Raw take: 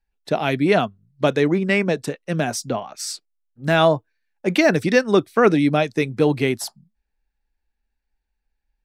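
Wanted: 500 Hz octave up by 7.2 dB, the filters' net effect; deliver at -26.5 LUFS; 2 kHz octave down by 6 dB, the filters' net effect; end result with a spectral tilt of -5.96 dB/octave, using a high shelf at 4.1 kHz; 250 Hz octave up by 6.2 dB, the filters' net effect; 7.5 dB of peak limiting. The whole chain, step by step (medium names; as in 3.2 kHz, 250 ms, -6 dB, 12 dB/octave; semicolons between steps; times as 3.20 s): peaking EQ 250 Hz +5.5 dB; peaking EQ 500 Hz +8 dB; peaking EQ 2 kHz -7.5 dB; treble shelf 4.1 kHz -3.5 dB; trim -9.5 dB; peak limiter -15 dBFS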